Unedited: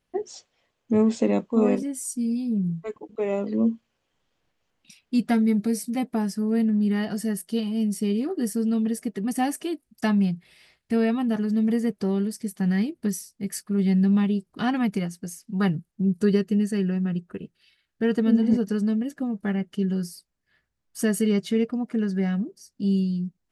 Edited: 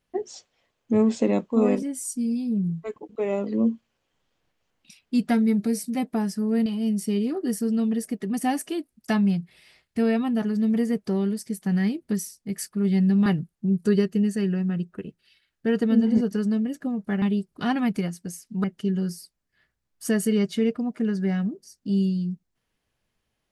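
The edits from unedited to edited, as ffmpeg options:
ffmpeg -i in.wav -filter_complex "[0:a]asplit=5[link_01][link_02][link_03][link_04][link_05];[link_01]atrim=end=6.662[link_06];[link_02]atrim=start=7.598:end=14.202[link_07];[link_03]atrim=start=15.618:end=19.582[link_08];[link_04]atrim=start=14.198:end=15.622[link_09];[link_05]atrim=start=19.578[link_10];[link_06][link_07]acrossfade=duration=0.004:curve1=hsin:curve2=hsin[link_11];[link_11][link_08]acrossfade=duration=0.004:curve1=hsin:curve2=hsin[link_12];[link_12][link_09]acrossfade=duration=0.004:curve1=hsin:curve2=hsin[link_13];[link_13][link_10]acrossfade=duration=0.004:curve1=hsin:curve2=hsin" out.wav

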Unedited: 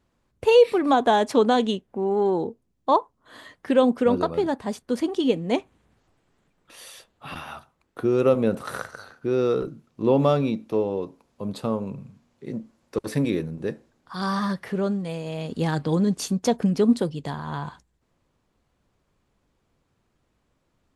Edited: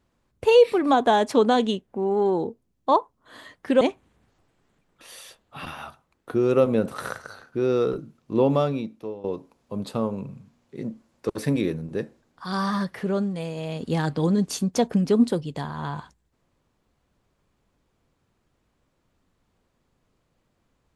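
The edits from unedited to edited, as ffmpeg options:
ffmpeg -i in.wav -filter_complex "[0:a]asplit=3[link_01][link_02][link_03];[link_01]atrim=end=3.812[link_04];[link_02]atrim=start=5.498:end=10.93,asetpts=PTS-STARTPTS,afade=type=out:start_time=4.562:duration=0.87:silence=0.16788[link_05];[link_03]atrim=start=10.93,asetpts=PTS-STARTPTS,afade=type=in:duration=0.004:curve=hsin:silence=0.16788[link_06];[link_05][link_06]concat=n=2:v=0:a=1[link_07];[link_04][link_07]acrossfade=duration=0.004:curve1=hsin:curve2=hsin" out.wav

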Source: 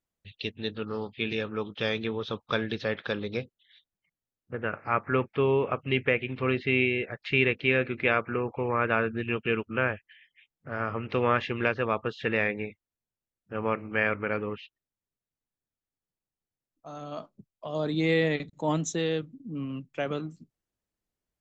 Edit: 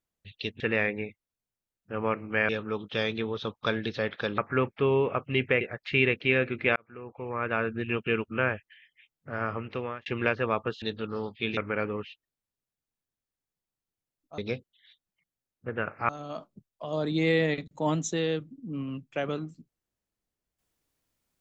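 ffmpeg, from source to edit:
ffmpeg -i in.wav -filter_complex "[0:a]asplit=11[link_01][link_02][link_03][link_04][link_05][link_06][link_07][link_08][link_09][link_10][link_11];[link_01]atrim=end=0.602[link_12];[link_02]atrim=start=12.208:end=14.102[link_13];[link_03]atrim=start=1.348:end=3.242[link_14];[link_04]atrim=start=4.948:end=6.182[link_15];[link_05]atrim=start=6.998:end=8.15,asetpts=PTS-STARTPTS,afade=type=out:start_time=1.148:duration=0.004:curve=hsin[link_16];[link_06]atrim=start=8.15:end=11.45,asetpts=PTS-STARTPTS,afade=type=in:duration=1.11,afade=type=out:start_time=2.72:duration=0.58[link_17];[link_07]atrim=start=11.45:end=12.212,asetpts=PTS-STARTPTS,afade=type=in:duration=0.004:curve=hsin[link_18];[link_08]atrim=start=0.598:end=1.352[link_19];[link_09]atrim=start=14.098:end=16.912[link_20];[link_10]atrim=start=3.238:end=4.952[link_21];[link_11]atrim=start=16.908[link_22];[link_12][link_13]acrossfade=duration=0.004:curve1=hsin:curve2=hsin[link_23];[link_23][link_14]acrossfade=duration=0.004:curve1=hsin:curve2=hsin[link_24];[link_24][link_15]acrossfade=duration=0.004:curve1=hsin:curve2=hsin[link_25];[link_16][link_17][link_18]concat=n=3:v=0:a=1[link_26];[link_25][link_26]acrossfade=duration=0.004:curve1=hsin:curve2=hsin[link_27];[link_27][link_19]acrossfade=duration=0.004:curve1=hsin:curve2=hsin[link_28];[link_28][link_20]acrossfade=duration=0.004:curve1=hsin:curve2=hsin[link_29];[link_29][link_21]acrossfade=duration=0.004:curve1=hsin:curve2=hsin[link_30];[link_30][link_22]acrossfade=duration=0.004:curve1=hsin:curve2=hsin" out.wav

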